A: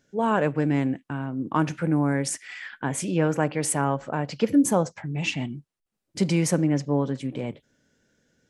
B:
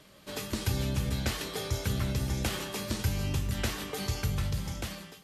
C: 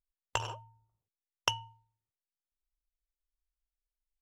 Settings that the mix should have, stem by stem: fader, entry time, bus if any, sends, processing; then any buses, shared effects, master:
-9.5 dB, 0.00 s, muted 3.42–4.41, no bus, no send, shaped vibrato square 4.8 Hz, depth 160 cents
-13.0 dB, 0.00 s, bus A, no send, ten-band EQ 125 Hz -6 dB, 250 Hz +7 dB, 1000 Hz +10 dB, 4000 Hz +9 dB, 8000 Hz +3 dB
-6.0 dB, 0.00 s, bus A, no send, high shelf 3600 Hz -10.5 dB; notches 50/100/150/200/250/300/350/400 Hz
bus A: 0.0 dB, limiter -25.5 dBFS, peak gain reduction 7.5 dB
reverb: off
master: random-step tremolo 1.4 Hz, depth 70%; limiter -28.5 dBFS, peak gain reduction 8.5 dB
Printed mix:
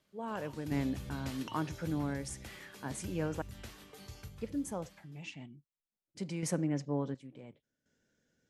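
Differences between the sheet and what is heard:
stem A: missing shaped vibrato square 4.8 Hz, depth 160 cents; stem B: missing ten-band EQ 125 Hz -6 dB, 250 Hz +7 dB, 1000 Hz +10 dB, 4000 Hz +9 dB, 8000 Hz +3 dB; master: missing limiter -28.5 dBFS, peak gain reduction 8.5 dB

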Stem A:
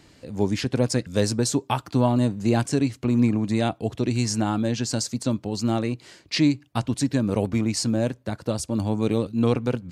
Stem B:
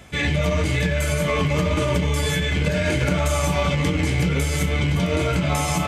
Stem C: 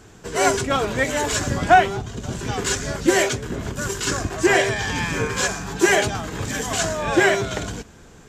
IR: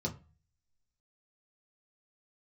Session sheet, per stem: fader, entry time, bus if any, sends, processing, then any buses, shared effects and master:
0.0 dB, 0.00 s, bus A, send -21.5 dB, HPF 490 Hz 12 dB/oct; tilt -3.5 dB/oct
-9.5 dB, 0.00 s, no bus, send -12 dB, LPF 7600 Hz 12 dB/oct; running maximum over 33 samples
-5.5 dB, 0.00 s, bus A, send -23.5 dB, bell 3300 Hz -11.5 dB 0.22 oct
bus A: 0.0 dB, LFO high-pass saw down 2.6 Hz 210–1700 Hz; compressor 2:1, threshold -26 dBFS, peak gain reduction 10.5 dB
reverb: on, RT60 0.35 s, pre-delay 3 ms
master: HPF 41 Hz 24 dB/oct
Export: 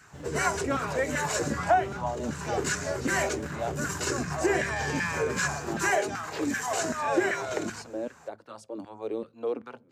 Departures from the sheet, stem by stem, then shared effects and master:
stem A 0.0 dB -> -10.5 dB; stem B -9.5 dB -> -20.5 dB

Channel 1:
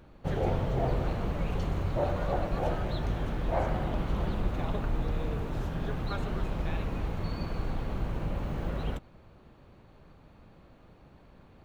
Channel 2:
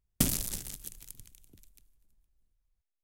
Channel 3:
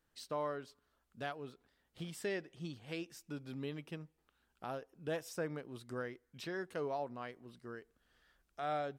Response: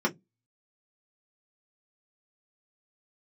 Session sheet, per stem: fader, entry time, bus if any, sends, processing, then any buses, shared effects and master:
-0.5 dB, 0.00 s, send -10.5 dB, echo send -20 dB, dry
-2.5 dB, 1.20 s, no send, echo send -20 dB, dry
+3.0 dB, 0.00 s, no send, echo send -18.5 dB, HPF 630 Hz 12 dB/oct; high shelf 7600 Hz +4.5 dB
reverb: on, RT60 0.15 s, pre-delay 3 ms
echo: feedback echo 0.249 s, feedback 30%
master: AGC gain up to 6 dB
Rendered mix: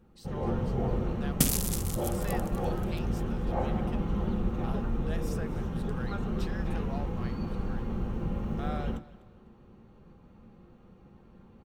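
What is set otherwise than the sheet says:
stem 1 -0.5 dB -> -10.5 dB; stem 3 +3.0 dB -> -6.5 dB

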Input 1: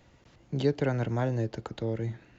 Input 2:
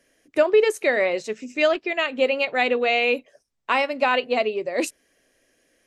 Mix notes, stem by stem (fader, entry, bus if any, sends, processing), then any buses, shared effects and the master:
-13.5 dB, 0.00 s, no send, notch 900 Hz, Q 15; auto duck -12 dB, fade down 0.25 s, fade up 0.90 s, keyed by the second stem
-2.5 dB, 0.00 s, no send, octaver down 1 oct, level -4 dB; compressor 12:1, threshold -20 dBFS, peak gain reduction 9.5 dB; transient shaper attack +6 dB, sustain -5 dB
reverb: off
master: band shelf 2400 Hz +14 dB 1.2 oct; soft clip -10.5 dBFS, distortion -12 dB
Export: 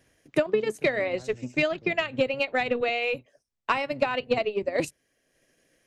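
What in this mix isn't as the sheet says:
stem 1 -13.5 dB -> -7.0 dB; master: missing band shelf 2400 Hz +14 dB 1.2 oct

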